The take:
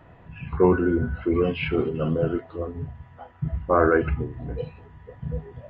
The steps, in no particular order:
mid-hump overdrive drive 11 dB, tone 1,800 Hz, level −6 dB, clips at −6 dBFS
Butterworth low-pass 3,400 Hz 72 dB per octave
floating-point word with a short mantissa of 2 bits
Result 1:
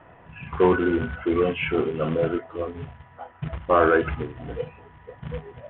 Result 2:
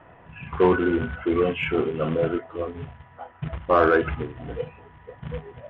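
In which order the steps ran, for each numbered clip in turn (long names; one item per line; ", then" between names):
floating-point word with a short mantissa, then mid-hump overdrive, then Butterworth low-pass
floating-point word with a short mantissa, then Butterworth low-pass, then mid-hump overdrive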